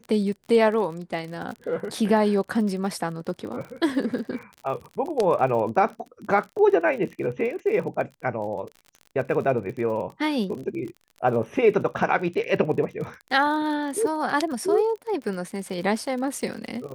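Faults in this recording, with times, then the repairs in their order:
surface crackle 44 per second −33 dBFS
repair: click removal

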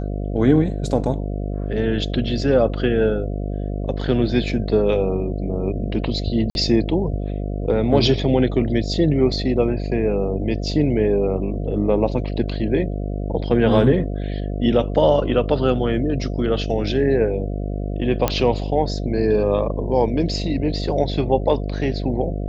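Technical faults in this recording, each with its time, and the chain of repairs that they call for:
mains buzz 50 Hz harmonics 14 −25 dBFS
0:06.50–0:06.55: drop-out 51 ms
0:18.28: click −4 dBFS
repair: click removal
hum removal 50 Hz, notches 14
repair the gap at 0:06.50, 51 ms

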